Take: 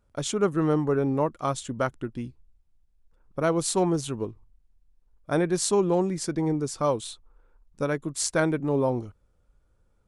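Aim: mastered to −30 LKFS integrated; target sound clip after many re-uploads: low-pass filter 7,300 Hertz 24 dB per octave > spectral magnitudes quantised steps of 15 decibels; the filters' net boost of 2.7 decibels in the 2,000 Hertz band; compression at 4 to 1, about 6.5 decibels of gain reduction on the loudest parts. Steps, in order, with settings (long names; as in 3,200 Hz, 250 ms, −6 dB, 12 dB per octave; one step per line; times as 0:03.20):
parametric band 2,000 Hz +4 dB
downward compressor 4 to 1, threshold −26 dBFS
low-pass filter 7,300 Hz 24 dB per octave
spectral magnitudes quantised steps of 15 dB
level +2 dB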